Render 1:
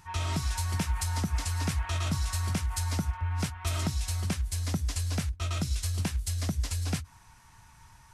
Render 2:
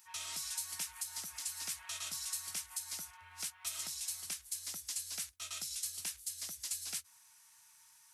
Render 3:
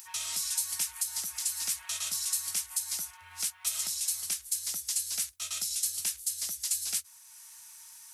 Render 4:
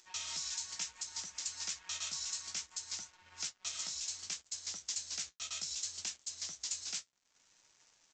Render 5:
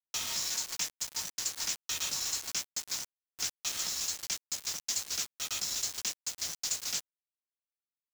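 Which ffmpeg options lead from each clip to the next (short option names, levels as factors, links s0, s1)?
-af "aderivative,alimiter=level_in=1.68:limit=0.0631:level=0:latency=1:release=222,volume=0.596,volume=1.19"
-af "highshelf=f=4000:g=8,acompressor=mode=upward:threshold=0.00501:ratio=2.5,volume=1.33"
-af "aresample=16000,aeval=exprs='sgn(val(0))*max(abs(val(0))-0.00211,0)':c=same,aresample=44100,flanger=delay=8.2:depth=8.5:regen=-41:speed=0.65:shape=triangular,volume=1.12"
-af "acrusher=bits=6:mix=0:aa=0.000001,volume=1.88"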